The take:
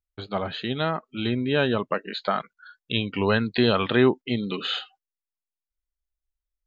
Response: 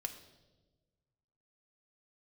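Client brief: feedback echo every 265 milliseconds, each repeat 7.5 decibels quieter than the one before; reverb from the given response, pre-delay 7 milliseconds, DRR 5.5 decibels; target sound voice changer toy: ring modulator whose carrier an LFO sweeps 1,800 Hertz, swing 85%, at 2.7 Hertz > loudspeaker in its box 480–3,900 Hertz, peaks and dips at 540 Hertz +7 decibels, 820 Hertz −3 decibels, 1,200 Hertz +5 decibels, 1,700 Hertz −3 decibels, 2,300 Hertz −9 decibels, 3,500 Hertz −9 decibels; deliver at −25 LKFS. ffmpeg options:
-filter_complex "[0:a]aecho=1:1:265|530|795|1060|1325:0.422|0.177|0.0744|0.0312|0.0131,asplit=2[link_01][link_02];[1:a]atrim=start_sample=2205,adelay=7[link_03];[link_02][link_03]afir=irnorm=-1:irlink=0,volume=-4.5dB[link_04];[link_01][link_04]amix=inputs=2:normalize=0,aeval=exprs='val(0)*sin(2*PI*1800*n/s+1800*0.85/2.7*sin(2*PI*2.7*n/s))':channel_layout=same,highpass=480,equalizer=frequency=540:width_type=q:width=4:gain=7,equalizer=frequency=820:width_type=q:width=4:gain=-3,equalizer=frequency=1200:width_type=q:width=4:gain=5,equalizer=frequency=1700:width_type=q:width=4:gain=-3,equalizer=frequency=2300:width_type=q:width=4:gain=-9,equalizer=frequency=3500:width_type=q:width=4:gain=-9,lowpass=frequency=3900:width=0.5412,lowpass=frequency=3900:width=1.3066,volume=3.5dB"

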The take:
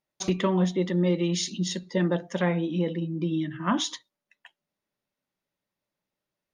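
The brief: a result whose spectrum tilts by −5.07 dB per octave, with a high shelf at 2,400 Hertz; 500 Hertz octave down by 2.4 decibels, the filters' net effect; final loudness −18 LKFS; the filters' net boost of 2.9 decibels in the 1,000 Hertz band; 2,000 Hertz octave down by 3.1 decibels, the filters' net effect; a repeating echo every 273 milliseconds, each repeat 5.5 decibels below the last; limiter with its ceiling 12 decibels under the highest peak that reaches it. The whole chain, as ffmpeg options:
ffmpeg -i in.wav -af "equalizer=frequency=500:width_type=o:gain=-4.5,equalizer=frequency=1000:width_type=o:gain=5.5,equalizer=frequency=2000:width_type=o:gain=-7,highshelf=frequency=2400:gain=3.5,alimiter=limit=-24dB:level=0:latency=1,aecho=1:1:273|546|819|1092|1365|1638|1911:0.531|0.281|0.149|0.079|0.0419|0.0222|0.0118,volume=14dB" out.wav

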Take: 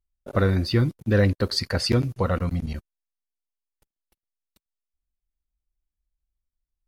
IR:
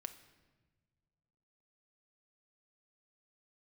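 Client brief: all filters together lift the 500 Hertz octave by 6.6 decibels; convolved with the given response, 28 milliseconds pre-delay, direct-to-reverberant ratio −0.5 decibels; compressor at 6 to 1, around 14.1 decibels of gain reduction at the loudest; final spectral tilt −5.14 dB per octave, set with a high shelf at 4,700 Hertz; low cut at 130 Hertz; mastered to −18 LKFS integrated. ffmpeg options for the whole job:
-filter_complex "[0:a]highpass=130,equalizer=frequency=500:width_type=o:gain=7.5,highshelf=frequency=4700:gain=-6,acompressor=threshold=-27dB:ratio=6,asplit=2[link_01][link_02];[1:a]atrim=start_sample=2205,adelay=28[link_03];[link_02][link_03]afir=irnorm=-1:irlink=0,volume=4.5dB[link_04];[link_01][link_04]amix=inputs=2:normalize=0,volume=11dB"

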